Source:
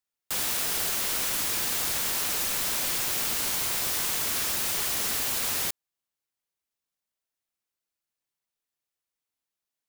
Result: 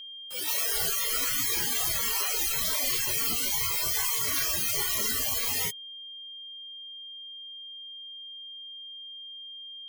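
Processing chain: spectral noise reduction 22 dB; whistle 3.2 kHz -45 dBFS; trim +5 dB

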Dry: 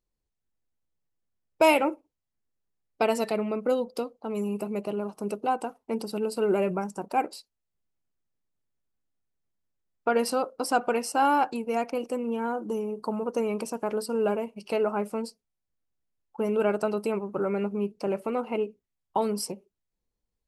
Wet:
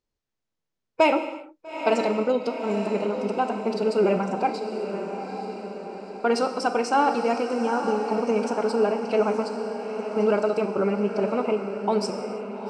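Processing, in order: low-pass 6.8 kHz 24 dB/octave; bass shelf 110 Hz -7 dB; in parallel at -2 dB: peak limiter -20.5 dBFS, peak gain reduction 10 dB; on the sum: time stretch by phase-locked vocoder 0.62×; on a send: echo that smears into a reverb 874 ms, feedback 55%, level -8 dB; on the sum: gated-style reverb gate 370 ms falling, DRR 7.5 dB

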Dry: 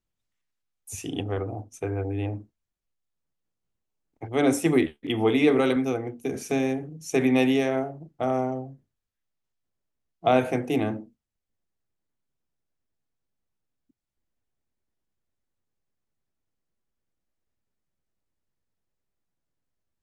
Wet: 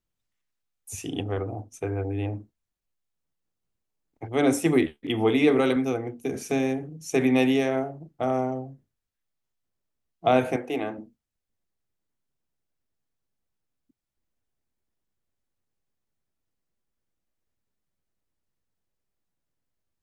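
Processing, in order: 10.56–10.98 s: tone controls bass -15 dB, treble -7 dB

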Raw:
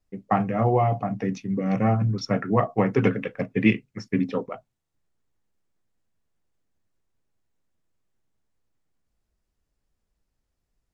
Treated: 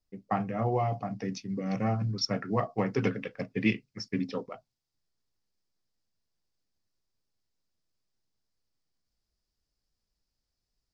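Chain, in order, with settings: peaking EQ 4.9 kHz +9 dB 0.72 oct, from 0.72 s +15 dB; trim -7.5 dB

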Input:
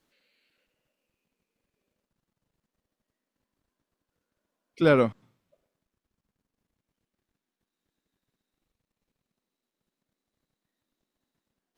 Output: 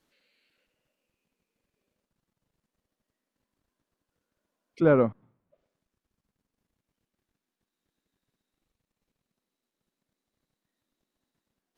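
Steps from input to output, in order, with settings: low-pass that closes with the level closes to 1.3 kHz, closed at -41.5 dBFS

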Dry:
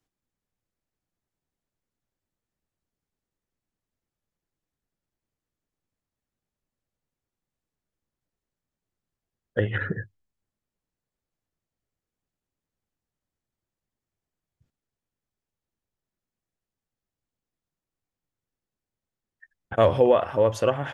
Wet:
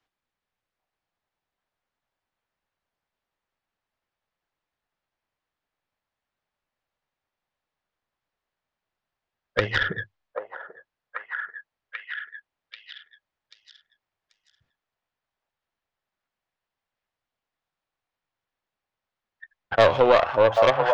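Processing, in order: tracing distortion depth 0.38 ms; three-band isolator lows -13 dB, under 580 Hz, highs -24 dB, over 4.7 kHz; repeats whose band climbs or falls 787 ms, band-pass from 790 Hz, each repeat 0.7 oct, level -2 dB; in parallel at 0 dB: peak limiter -15.5 dBFS, peak gain reduction 6 dB; on the sum: trim +1.5 dB

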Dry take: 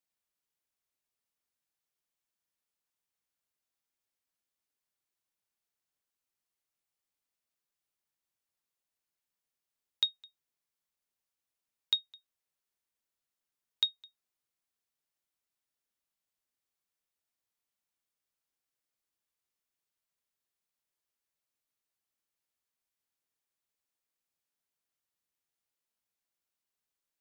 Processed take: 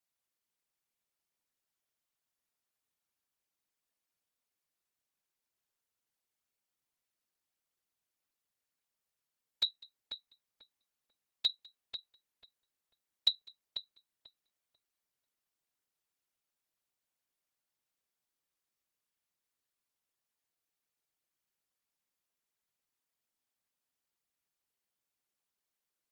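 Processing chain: whisper effect; filtered feedback delay 512 ms, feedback 24%, low-pass 1.9 kHz, level -5 dB; speed mistake 24 fps film run at 25 fps

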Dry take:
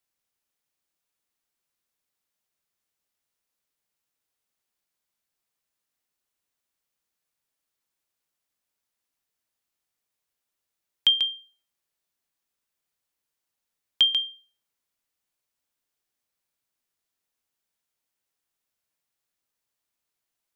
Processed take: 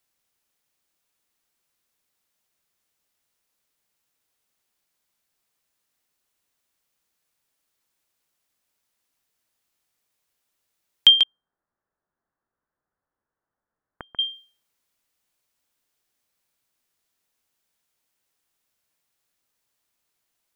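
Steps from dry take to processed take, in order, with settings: 11.23–14.19 s: steep low-pass 1.7 kHz 48 dB/octave; dynamic bell 840 Hz, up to +3 dB, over -41 dBFS, Q 0.81; trim +6.5 dB

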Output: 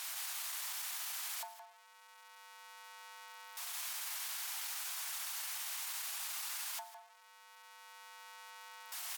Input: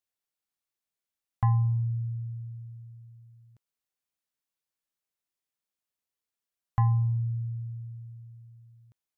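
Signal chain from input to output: jump at every zero crossing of -32 dBFS; delay 162 ms -3.5 dB; pitch shift -2.5 st; compression 5:1, threshold -34 dBFS, peak gain reduction 14 dB; steep high-pass 750 Hz 36 dB/octave; loudspeaker Doppler distortion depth 0.3 ms; trim -2 dB

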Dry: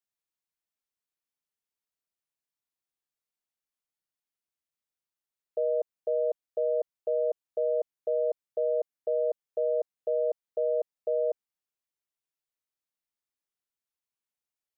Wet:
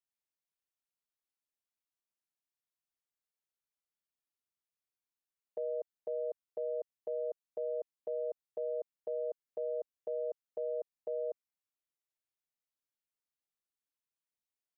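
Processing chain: dynamic bell 690 Hz, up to -4 dB, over -41 dBFS, Q 1.1; trim -6 dB

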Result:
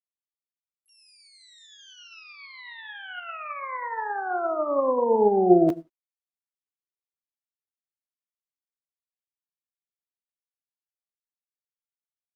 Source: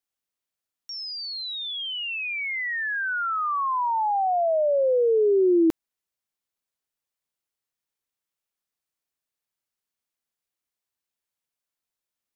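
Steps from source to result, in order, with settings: harmony voices -12 st -11 dB, +7 st -18 dB, +12 st -7 dB; gated-style reverb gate 200 ms flat, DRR 8 dB; upward expansion 2.5:1, over -34 dBFS; trim +3.5 dB

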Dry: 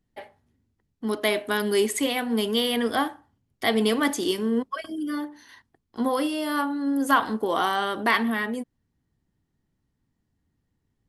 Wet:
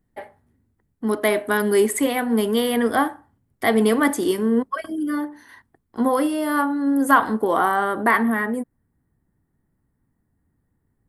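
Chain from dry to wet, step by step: high-order bell 4.1 kHz -9 dB, from 7.56 s -15.5 dB; trim +5 dB

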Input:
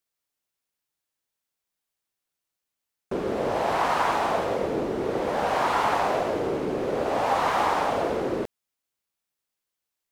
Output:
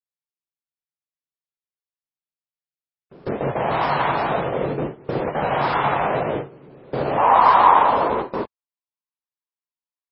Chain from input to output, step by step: gate with hold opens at -17 dBFS; peaking EQ 140 Hz +13 dB 0.49 oct, from 7.18 s 1 kHz; trim +3 dB; MP3 16 kbps 16 kHz

